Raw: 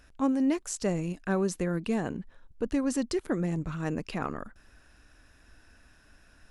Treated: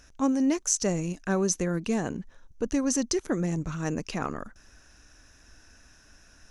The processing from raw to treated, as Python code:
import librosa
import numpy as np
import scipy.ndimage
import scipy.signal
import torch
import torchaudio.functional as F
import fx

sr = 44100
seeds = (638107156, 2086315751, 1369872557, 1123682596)

y = fx.peak_eq(x, sr, hz=6100.0, db=15.0, octaves=0.37)
y = y * 10.0 ** (1.5 / 20.0)